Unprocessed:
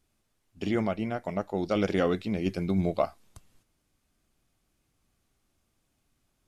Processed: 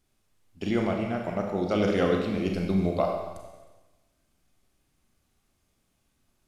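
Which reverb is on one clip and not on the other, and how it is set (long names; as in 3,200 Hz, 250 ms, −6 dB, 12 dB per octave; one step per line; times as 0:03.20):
four-comb reverb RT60 1.2 s, combs from 30 ms, DRR 1.5 dB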